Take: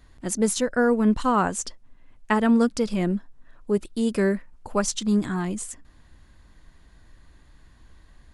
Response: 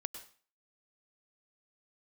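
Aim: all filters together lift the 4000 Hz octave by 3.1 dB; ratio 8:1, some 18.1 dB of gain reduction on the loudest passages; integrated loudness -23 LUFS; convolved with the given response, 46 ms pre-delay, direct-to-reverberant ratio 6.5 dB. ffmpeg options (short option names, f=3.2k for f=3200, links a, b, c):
-filter_complex "[0:a]equalizer=f=4k:t=o:g=4,acompressor=threshold=-35dB:ratio=8,asplit=2[a][b];[1:a]atrim=start_sample=2205,adelay=46[c];[b][c]afir=irnorm=-1:irlink=0,volume=-5dB[d];[a][d]amix=inputs=2:normalize=0,volume=15.5dB"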